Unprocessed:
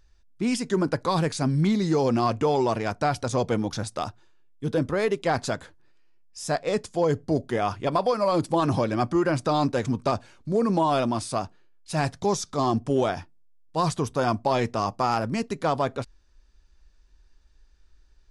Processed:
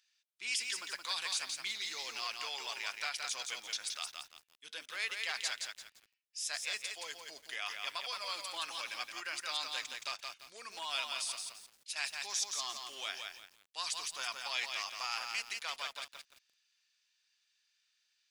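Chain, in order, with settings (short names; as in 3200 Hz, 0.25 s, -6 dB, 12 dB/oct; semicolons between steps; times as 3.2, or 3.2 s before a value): 11.35–11.96 compressor 6:1, threshold -35 dBFS, peak gain reduction 12 dB; resonant high-pass 2600 Hz, resonance Q 1.6; lo-fi delay 0.171 s, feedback 35%, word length 9-bit, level -4 dB; gain -3 dB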